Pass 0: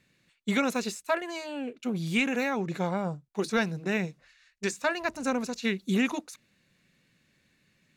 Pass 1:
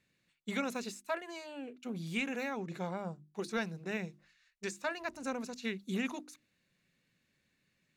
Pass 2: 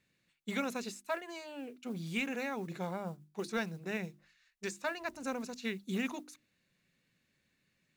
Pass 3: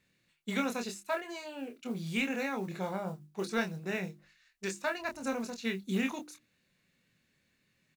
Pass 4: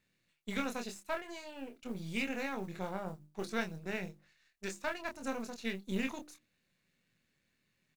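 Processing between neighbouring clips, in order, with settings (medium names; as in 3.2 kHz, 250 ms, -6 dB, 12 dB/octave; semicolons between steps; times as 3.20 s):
hum notches 50/100/150/200/250/300/350 Hz; trim -8.5 dB
modulation noise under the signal 28 dB
doubling 26 ms -6 dB; trim +2 dB
partial rectifier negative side -7 dB; trim -2 dB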